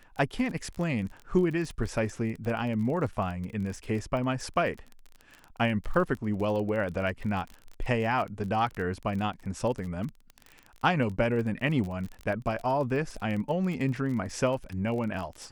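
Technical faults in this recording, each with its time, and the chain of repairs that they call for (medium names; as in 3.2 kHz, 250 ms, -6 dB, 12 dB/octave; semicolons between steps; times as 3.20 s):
crackle 30 per s -34 dBFS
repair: de-click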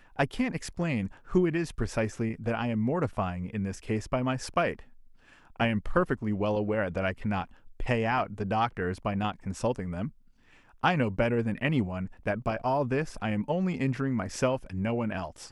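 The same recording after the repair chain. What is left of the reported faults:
nothing left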